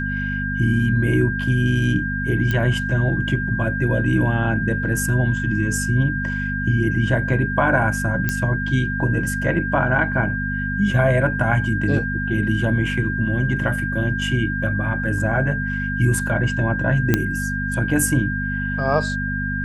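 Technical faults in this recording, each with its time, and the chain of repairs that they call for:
hum 50 Hz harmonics 5 -26 dBFS
tone 1600 Hz -25 dBFS
2.51 pop -10 dBFS
8.29 pop -7 dBFS
17.14 pop -3 dBFS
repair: de-click; de-hum 50 Hz, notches 5; notch 1600 Hz, Q 30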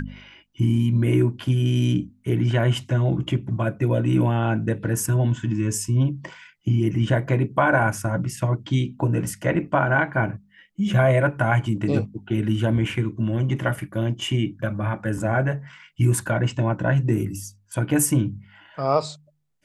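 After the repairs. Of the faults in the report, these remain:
none

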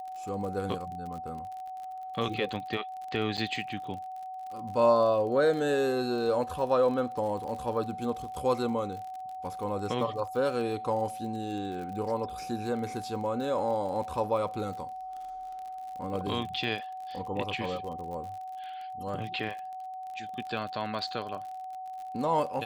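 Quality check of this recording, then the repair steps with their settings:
crackle 42/s -38 dBFS
tone 750 Hz -37 dBFS
3.37–3.38 gap 7.2 ms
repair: de-click; notch 750 Hz, Q 30; interpolate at 3.37, 7.2 ms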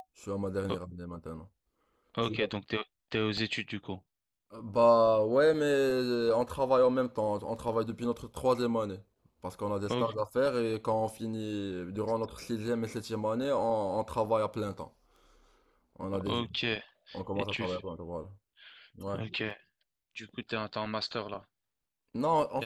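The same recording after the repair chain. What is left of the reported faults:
none

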